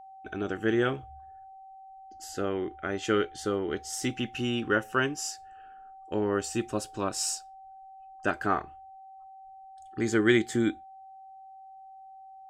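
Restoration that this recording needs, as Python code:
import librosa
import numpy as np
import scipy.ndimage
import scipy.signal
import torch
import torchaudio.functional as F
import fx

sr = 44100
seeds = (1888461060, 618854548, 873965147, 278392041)

y = fx.notch(x, sr, hz=770.0, q=30.0)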